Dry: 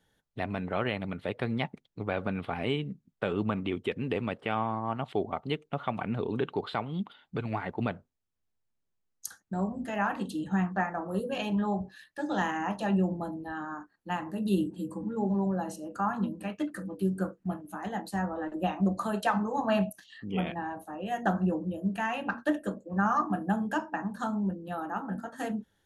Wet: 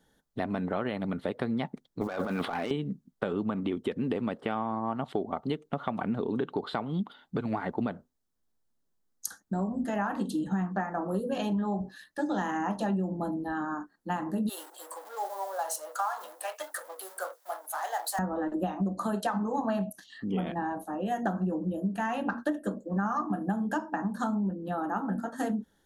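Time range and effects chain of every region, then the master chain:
0:02.01–0:02.71: log-companded quantiser 8 bits + mid-hump overdrive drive 16 dB, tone 7,700 Hz, clips at −15.5 dBFS + compressor whose output falls as the input rises −35 dBFS
0:14.49–0:18.19: mu-law and A-law mismatch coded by mu + Butterworth high-pass 580 Hz + high-shelf EQ 7,700 Hz +10 dB
0:24.35–0:24.84: high-shelf EQ 5,000 Hz −10.5 dB + one half of a high-frequency compander encoder only
whole clip: graphic EQ with 15 bands 100 Hz −8 dB, 250 Hz +4 dB, 2,500 Hz −9 dB; downward compressor, threshold −31 dBFS; level +4.5 dB

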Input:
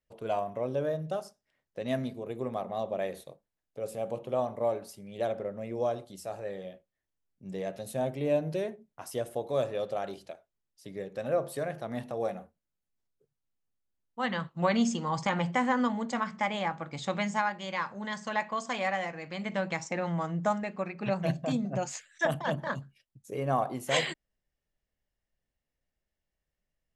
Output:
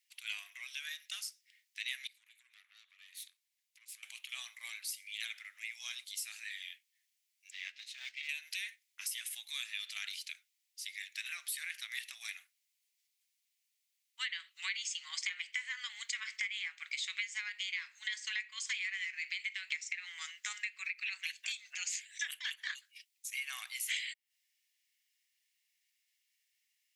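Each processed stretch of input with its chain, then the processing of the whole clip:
0:02.07–0:04.03: downward compressor, threshold −48 dBFS + tube saturation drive 47 dB, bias 0.7
0:07.51–0:08.29: one scale factor per block 5 bits + transient designer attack −11 dB, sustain −7 dB + high-frequency loss of the air 180 metres
whole clip: elliptic high-pass filter 2,100 Hz, stop band 80 dB; dynamic equaliser 5,800 Hz, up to −5 dB, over −55 dBFS, Q 0.89; downward compressor 10 to 1, threshold −49 dBFS; level +14 dB

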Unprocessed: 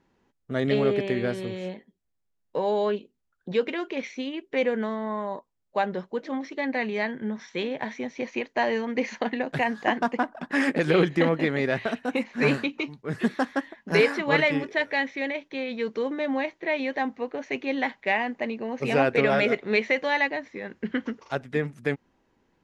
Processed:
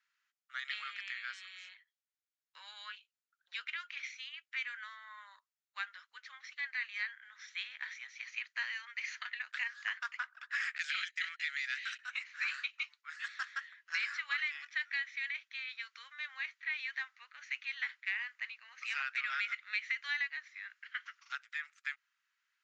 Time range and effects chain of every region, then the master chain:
0:10.78–0:11.99: high-pass filter 1,500 Hz 24 dB per octave + noise gate −45 dBFS, range −22 dB + high-shelf EQ 5,400 Hz +11 dB
whole clip: Chebyshev band-pass filter 1,300–7,300 Hz, order 4; downward compressor 5 to 1, threshold −28 dBFS; level −4 dB

